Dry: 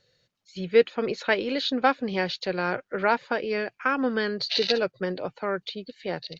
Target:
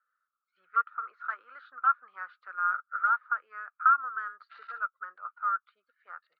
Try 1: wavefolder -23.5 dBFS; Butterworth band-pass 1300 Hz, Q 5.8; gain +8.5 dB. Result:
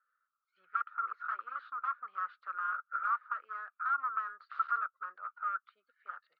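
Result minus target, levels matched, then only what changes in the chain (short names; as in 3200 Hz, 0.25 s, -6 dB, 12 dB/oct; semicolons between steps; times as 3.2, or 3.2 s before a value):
wavefolder: distortion +14 dB
change: wavefolder -13 dBFS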